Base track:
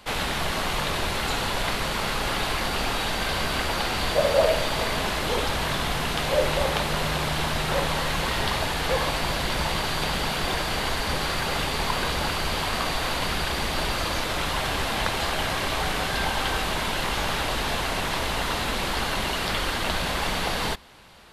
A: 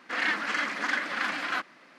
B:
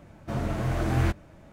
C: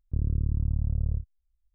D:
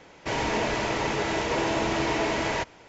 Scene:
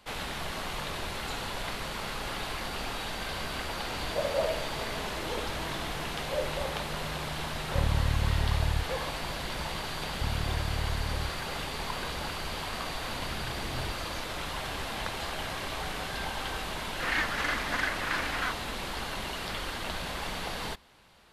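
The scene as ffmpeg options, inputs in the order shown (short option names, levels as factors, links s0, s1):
-filter_complex "[3:a]asplit=2[s0][s1];[0:a]volume=0.355[s2];[4:a]asoftclip=type=hard:threshold=0.0562,atrim=end=2.88,asetpts=PTS-STARTPTS,volume=0.178,afade=t=in:d=0.004:c=hsin,afade=t=out:st=2.876:d=0.004:c=hsin,adelay=159201S[s3];[s0]atrim=end=1.74,asetpts=PTS-STARTPTS,volume=0.891,afade=t=in:d=0.004:c=hsin,afade=t=out:st=1.736:d=0.004:c=hsin,adelay=336042S[s4];[s1]atrim=end=1.74,asetpts=PTS-STARTPTS,volume=0.501,afade=t=in:d=0.004:c=hsin,afade=t=out:st=1.736:d=0.004:c=hsin,adelay=10080[s5];[2:a]atrim=end=1.52,asetpts=PTS-STARTPTS,volume=0.178,afade=t=in:d=0.004:c=hsin,afade=t=out:st=1.516:d=0.004:c=hsin,adelay=12800[s6];[1:a]atrim=end=1.98,asetpts=PTS-STARTPTS,volume=0.75,afade=t=in:d=0.004:c=hsin,afade=t=out:st=1.976:d=0.004:c=hsin,adelay=16900[s7];[s2][s3][s4][s5][s6][s7]amix=inputs=6:normalize=0"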